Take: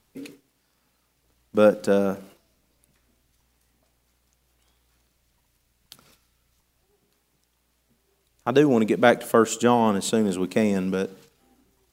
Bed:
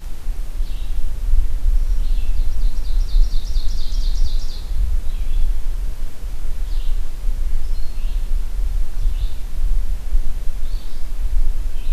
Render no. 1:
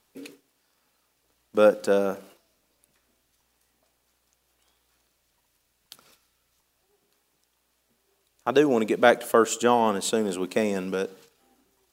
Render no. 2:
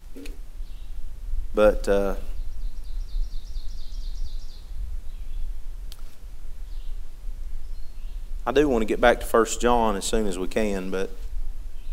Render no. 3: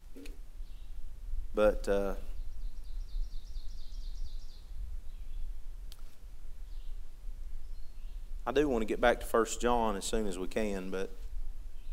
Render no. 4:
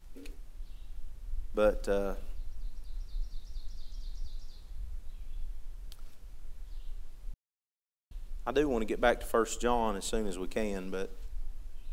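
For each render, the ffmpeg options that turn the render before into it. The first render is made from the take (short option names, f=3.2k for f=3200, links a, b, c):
-af "bass=f=250:g=-10,treble=f=4k:g=0,bandreject=f=2.1k:w=23"
-filter_complex "[1:a]volume=-13dB[a];[0:a][a]amix=inputs=2:normalize=0"
-af "volume=-9dB"
-filter_complex "[0:a]asplit=3[a][b][c];[a]atrim=end=7.34,asetpts=PTS-STARTPTS,afade=t=out:st=7.336:d=0.004:c=hsin[d];[b]atrim=start=7.34:end=8.11,asetpts=PTS-STARTPTS,volume=0[e];[c]atrim=start=8.11,asetpts=PTS-STARTPTS,afade=t=in:d=0.004:c=hsin[f];[d][e][f]concat=n=3:v=0:a=1"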